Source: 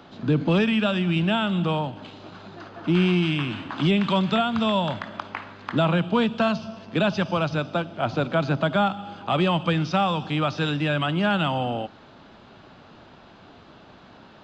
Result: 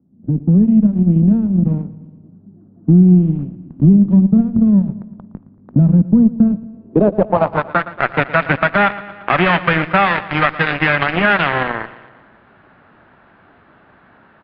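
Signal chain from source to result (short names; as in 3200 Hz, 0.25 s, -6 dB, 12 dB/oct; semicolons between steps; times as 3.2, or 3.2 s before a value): rattling part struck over -27 dBFS, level -24 dBFS; added harmonics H 3 -15 dB, 7 -21 dB, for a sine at -10.5 dBFS; low-pass sweep 210 Hz -> 1800 Hz, 6.57–7.89; compressor 3:1, threshold -21 dBFS, peak gain reduction 5.5 dB; dynamic EQ 2800 Hz, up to +3 dB, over -36 dBFS, Q 0.86; AGC gain up to 8.5 dB; on a send: feedback echo 0.115 s, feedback 59%, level -17.5 dB; on the sum: downsampling 11025 Hz; maximiser +6.5 dB; gain -1 dB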